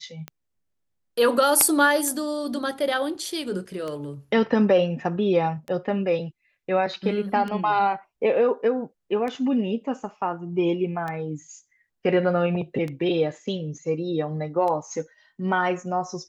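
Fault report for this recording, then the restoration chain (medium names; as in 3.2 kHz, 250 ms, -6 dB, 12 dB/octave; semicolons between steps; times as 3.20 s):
tick 33 1/3 rpm -19 dBFS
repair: de-click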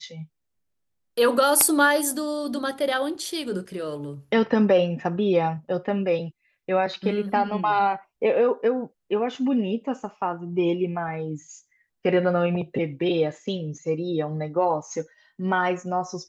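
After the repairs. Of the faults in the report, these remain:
nothing left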